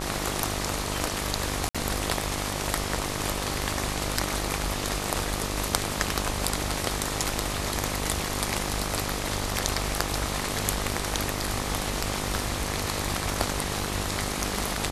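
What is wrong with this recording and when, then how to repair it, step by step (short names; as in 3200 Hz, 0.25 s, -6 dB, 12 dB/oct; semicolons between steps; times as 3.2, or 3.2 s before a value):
buzz 50 Hz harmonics 26 -33 dBFS
1.69–1.75 gap 56 ms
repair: de-hum 50 Hz, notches 26; interpolate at 1.69, 56 ms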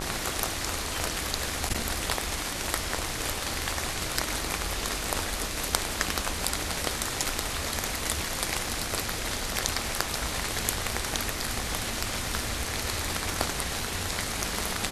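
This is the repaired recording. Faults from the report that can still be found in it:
none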